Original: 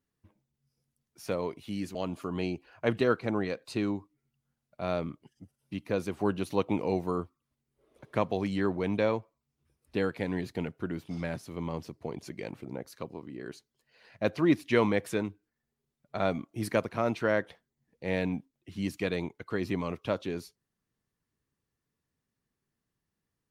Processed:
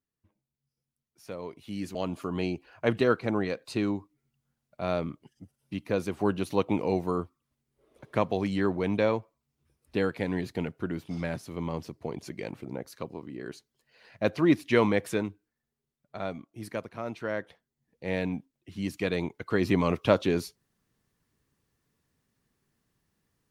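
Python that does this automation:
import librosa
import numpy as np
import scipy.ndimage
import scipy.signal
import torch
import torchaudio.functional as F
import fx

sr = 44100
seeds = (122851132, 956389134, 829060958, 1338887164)

y = fx.gain(x, sr, db=fx.line((1.32, -7.5), (1.93, 2.0), (15.12, 2.0), (16.45, -7.0), (17.05, -7.0), (18.08, 0.0), (18.82, 0.0), (19.93, 8.5)))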